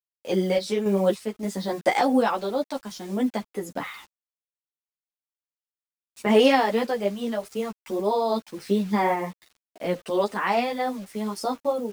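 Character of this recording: a quantiser's noise floor 8-bit, dither none; random-step tremolo; a shimmering, thickened sound

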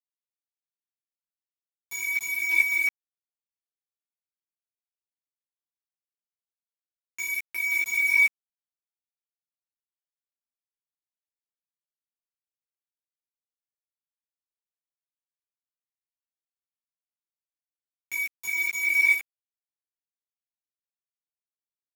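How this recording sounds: tremolo saw up 2.3 Hz, depth 80%; a quantiser's noise floor 6-bit, dither none; a shimmering, thickened sound

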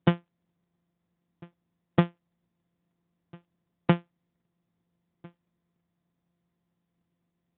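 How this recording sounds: a buzz of ramps at a fixed pitch in blocks of 256 samples; AMR-NB

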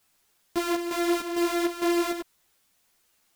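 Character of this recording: a buzz of ramps at a fixed pitch in blocks of 128 samples; chopped level 2.2 Hz, depth 60%, duty 65%; a quantiser's noise floor 12-bit, dither triangular; a shimmering, thickened sound

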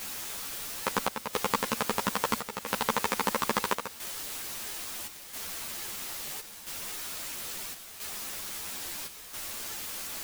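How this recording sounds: a quantiser's noise floor 6-bit, dither triangular; chopped level 0.75 Hz, depth 60%, duty 80%; a shimmering, thickened sound

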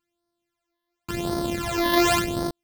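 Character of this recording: a buzz of ramps at a fixed pitch in blocks of 128 samples; phasing stages 12, 0.92 Hz, lowest notch 130–2600 Hz

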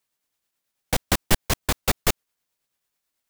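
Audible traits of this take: tremolo triangle 9.2 Hz, depth 45%

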